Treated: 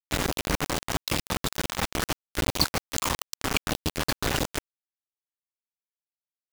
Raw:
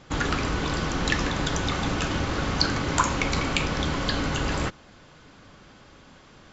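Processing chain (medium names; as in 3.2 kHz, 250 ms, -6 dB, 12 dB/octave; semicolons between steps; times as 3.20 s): random holes in the spectrogram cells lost 52%; bit crusher 4-bit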